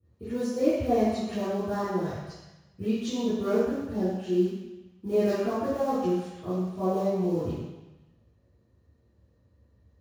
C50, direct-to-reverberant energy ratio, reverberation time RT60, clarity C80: -3.0 dB, -16.5 dB, 1.0 s, 0.5 dB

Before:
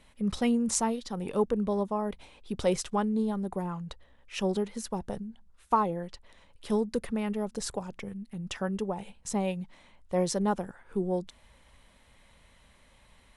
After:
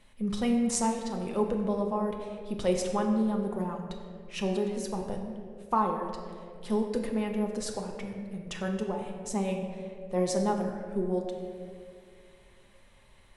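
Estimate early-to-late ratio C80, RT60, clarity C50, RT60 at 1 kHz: 6.0 dB, 2.3 s, 5.0 dB, 1.9 s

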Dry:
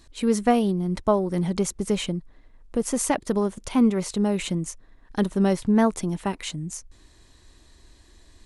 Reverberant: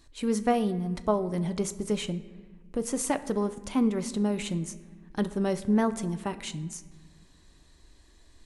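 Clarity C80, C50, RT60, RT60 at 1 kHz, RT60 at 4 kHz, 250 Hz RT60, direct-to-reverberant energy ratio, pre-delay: 16.5 dB, 15.0 dB, 1.5 s, 1.4 s, 0.95 s, 2.2 s, 11.0 dB, 7 ms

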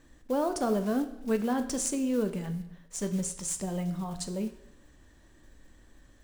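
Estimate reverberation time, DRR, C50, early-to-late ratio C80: 0.80 s, 8.0 dB, 12.0 dB, 14.0 dB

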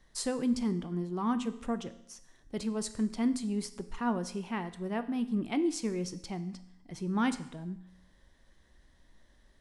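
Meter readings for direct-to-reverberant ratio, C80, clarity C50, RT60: 10.5 dB, 17.0 dB, 14.5 dB, 0.80 s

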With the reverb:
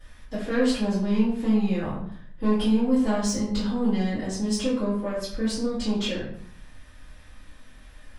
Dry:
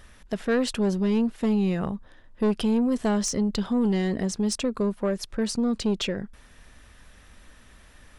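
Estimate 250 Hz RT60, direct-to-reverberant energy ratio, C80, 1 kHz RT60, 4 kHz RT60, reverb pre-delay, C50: 0.75 s, -12.0 dB, 6.5 dB, 0.55 s, 0.45 s, 3 ms, 2.5 dB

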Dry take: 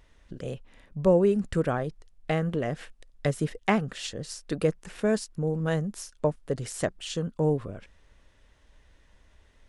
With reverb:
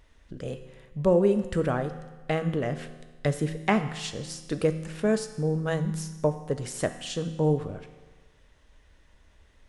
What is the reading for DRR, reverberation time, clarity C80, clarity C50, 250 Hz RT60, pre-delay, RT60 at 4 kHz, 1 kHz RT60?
9.0 dB, 1.3 s, 12.5 dB, 11.0 dB, 1.3 s, 6 ms, 1.3 s, 1.3 s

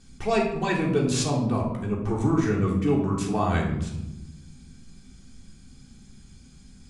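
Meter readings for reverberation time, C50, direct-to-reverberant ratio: 1.0 s, 5.0 dB, -2.5 dB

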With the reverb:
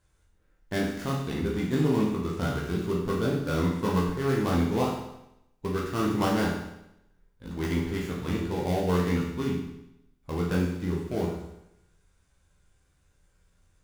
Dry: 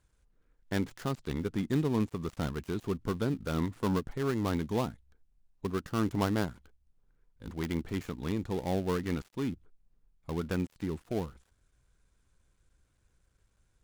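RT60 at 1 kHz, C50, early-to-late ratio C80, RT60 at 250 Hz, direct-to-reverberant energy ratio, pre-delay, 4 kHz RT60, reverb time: 0.85 s, 2.5 dB, 6.0 dB, 0.80 s, -5.0 dB, 12 ms, 0.80 s, 0.85 s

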